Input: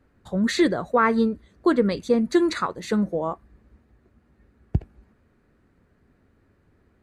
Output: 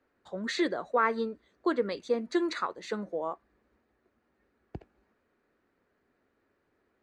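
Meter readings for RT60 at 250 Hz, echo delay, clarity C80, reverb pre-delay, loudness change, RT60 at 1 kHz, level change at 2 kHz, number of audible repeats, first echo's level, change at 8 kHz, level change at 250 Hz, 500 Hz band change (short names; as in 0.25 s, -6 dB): none, none, none, none, -8.0 dB, none, -6.0 dB, none, none, -9.5 dB, -11.5 dB, -7.5 dB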